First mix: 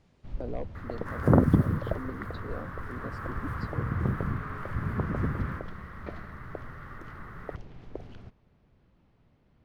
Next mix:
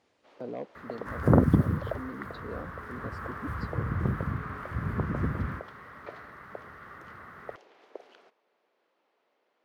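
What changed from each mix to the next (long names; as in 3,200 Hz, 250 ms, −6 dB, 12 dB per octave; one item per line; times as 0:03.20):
first sound: add high-pass filter 420 Hz 24 dB per octave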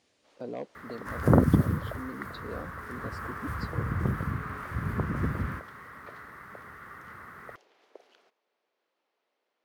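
first sound −7.5 dB
master: add high-shelf EQ 3,400 Hz +9.5 dB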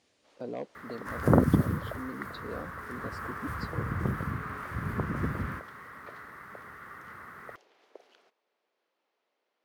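second sound: add low-shelf EQ 120 Hz −5 dB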